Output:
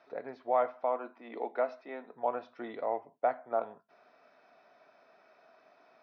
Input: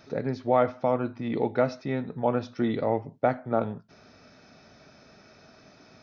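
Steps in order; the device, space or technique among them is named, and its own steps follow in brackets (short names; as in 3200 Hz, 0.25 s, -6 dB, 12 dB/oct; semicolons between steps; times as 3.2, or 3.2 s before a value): tin-can telephone (BPF 490–2600 Hz; small resonant body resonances 700/1000 Hz, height 8 dB, ringing for 30 ms); 0.84–2.14 steep high-pass 200 Hz; gain -7 dB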